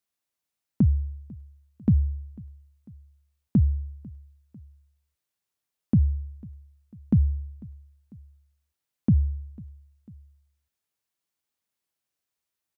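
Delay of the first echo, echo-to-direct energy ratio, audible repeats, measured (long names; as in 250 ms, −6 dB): 497 ms, −21.5 dB, 2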